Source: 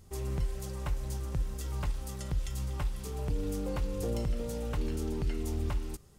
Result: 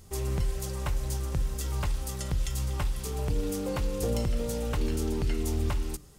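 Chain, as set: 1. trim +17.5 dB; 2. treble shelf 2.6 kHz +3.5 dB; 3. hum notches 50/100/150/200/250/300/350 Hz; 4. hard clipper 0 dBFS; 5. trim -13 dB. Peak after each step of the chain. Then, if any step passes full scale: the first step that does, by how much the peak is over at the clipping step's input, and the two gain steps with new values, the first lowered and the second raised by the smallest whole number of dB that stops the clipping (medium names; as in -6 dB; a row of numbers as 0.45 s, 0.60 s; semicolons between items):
-5.5 dBFS, -4.5 dBFS, -5.0 dBFS, -5.0 dBFS, -18.0 dBFS; nothing clips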